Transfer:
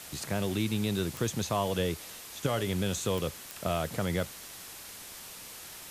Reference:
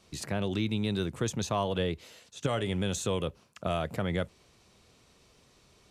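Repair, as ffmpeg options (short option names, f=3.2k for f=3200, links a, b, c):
-af "adeclick=t=4,afwtdn=0.0063"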